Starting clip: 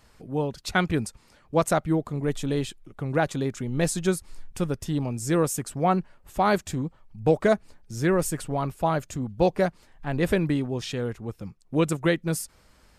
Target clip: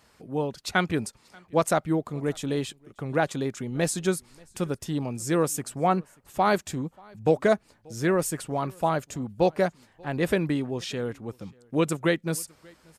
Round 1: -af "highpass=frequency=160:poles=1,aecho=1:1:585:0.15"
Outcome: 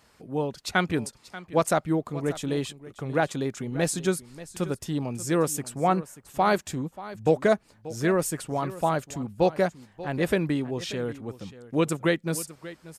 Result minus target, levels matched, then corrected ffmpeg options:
echo-to-direct +11 dB
-af "highpass=frequency=160:poles=1,aecho=1:1:585:0.0422"

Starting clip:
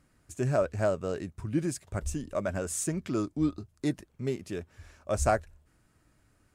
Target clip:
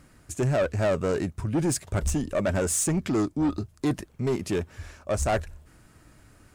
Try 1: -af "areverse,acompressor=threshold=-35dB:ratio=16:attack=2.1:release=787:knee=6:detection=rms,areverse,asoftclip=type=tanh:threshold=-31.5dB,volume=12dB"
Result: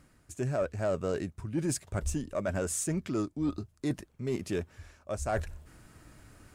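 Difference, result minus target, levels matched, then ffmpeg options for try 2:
downward compressor: peak gain reduction +11 dB
-af "areverse,acompressor=threshold=-23.5dB:ratio=16:attack=2.1:release=787:knee=6:detection=rms,areverse,asoftclip=type=tanh:threshold=-31.5dB,volume=12dB"

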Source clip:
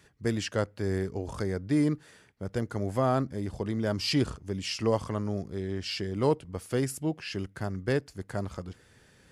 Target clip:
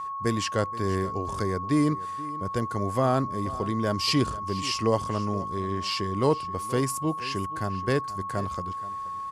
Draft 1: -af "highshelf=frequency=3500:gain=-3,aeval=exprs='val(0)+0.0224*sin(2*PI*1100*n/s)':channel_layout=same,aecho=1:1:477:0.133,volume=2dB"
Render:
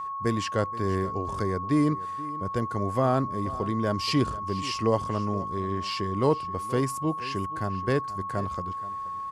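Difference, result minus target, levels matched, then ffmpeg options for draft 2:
8,000 Hz band −5.0 dB
-af "highshelf=frequency=3500:gain=3.5,aeval=exprs='val(0)+0.0224*sin(2*PI*1100*n/s)':channel_layout=same,aecho=1:1:477:0.133,volume=2dB"

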